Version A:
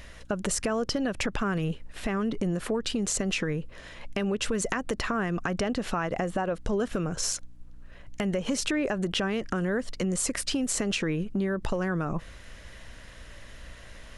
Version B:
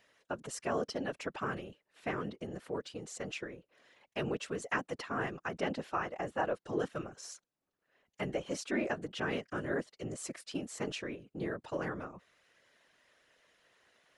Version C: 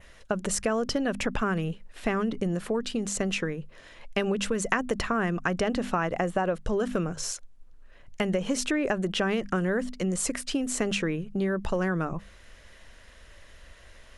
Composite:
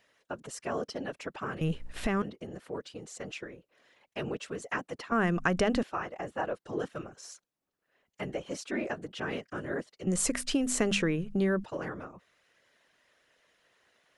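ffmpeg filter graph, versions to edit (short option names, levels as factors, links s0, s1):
-filter_complex "[2:a]asplit=2[s0][s1];[1:a]asplit=4[s2][s3][s4][s5];[s2]atrim=end=1.612[s6];[0:a]atrim=start=1.608:end=2.222[s7];[s3]atrim=start=2.218:end=5.122[s8];[s0]atrim=start=5.118:end=5.832[s9];[s4]atrim=start=5.828:end=10.072[s10];[s1]atrim=start=10.068:end=11.642[s11];[s5]atrim=start=11.638[s12];[s6][s7]acrossfade=d=0.004:c1=hsin:c2=hsin[s13];[s13][s8]acrossfade=d=0.004:c1=hsin:c2=hsin[s14];[s14][s9]acrossfade=d=0.004:c1=hsin:c2=hsin[s15];[s15][s10]acrossfade=d=0.004:c1=hsin:c2=hsin[s16];[s16][s11]acrossfade=d=0.004:c1=hsin:c2=hsin[s17];[s17][s12]acrossfade=d=0.004:c1=hsin:c2=hsin"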